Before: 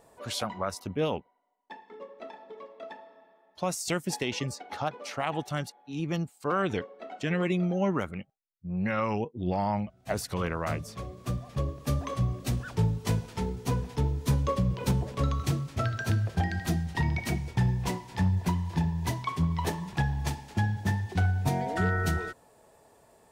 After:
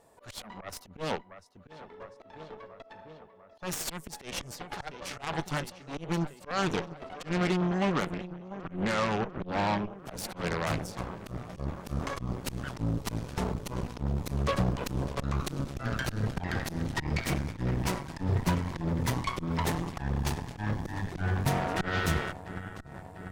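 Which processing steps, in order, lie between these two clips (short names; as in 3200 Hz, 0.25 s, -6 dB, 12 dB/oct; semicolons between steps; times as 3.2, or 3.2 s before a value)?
dynamic EQ 160 Hz, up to +3 dB, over -46 dBFS, Q 7.9; darkening echo 0.696 s, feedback 73%, low-pass 4500 Hz, level -14 dB; auto swell 0.144 s; added harmonics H 3 -21 dB, 8 -15 dB, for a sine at -16 dBFS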